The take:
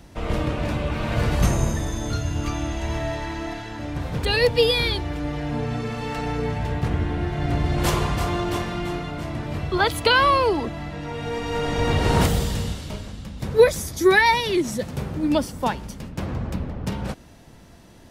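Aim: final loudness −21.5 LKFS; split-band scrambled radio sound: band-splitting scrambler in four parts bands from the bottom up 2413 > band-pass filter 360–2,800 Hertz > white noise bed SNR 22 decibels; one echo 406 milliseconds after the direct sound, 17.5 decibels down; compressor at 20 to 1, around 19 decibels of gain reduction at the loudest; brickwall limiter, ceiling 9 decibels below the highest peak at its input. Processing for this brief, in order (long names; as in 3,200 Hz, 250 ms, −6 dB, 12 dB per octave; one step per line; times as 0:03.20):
downward compressor 20 to 1, threshold −27 dBFS
brickwall limiter −26 dBFS
single-tap delay 406 ms −17.5 dB
band-splitting scrambler in four parts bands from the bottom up 2413
band-pass filter 360–2,800 Hz
white noise bed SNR 22 dB
level +14 dB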